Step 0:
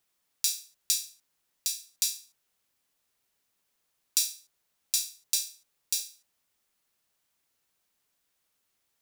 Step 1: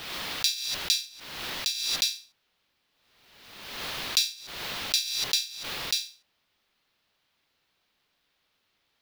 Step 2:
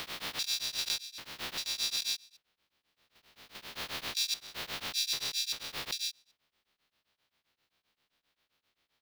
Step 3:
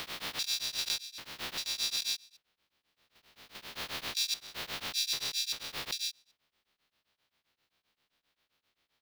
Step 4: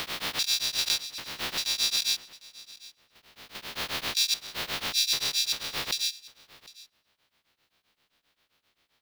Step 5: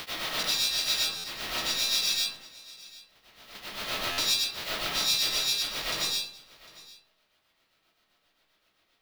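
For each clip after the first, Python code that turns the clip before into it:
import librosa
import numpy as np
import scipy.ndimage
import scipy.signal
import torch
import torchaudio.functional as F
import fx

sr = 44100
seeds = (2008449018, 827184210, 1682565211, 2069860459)

y1 = fx.high_shelf_res(x, sr, hz=5600.0, db=-12.5, q=1.5)
y1 = fx.pre_swell(y1, sr, db_per_s=43.0)
y1 = y1 * librosa.db_to_amplitude(7.0)
y2 = fx.spec_steps(y1, sr, hold_ms=200)
y2 = y2 * np.abs(np.cos(np.pi * 7.6 * np.arange(len(y2)) / sr))
y3 = y2
y4 = y3 + 10.0 ** (-20.5 / 20.0) * np.pad(y3, (int(752 * sr / 1000.0), 0))[:len(y3)]
y4 = y4 * librosa.db_to_amplitude(6.5)
y5 = fx.rev_freeverb(y4, sr, rt60_s=0.79, hf_ratio=0.4, predelay_ms=60, drr_db=-7.5)
y5 = fx.buffer_glitch(y5, sr, at_s=(1.17, 4.11), block=512, repeats=5)
y5 = y5 * librosa.db_to_amplitude(-6.0)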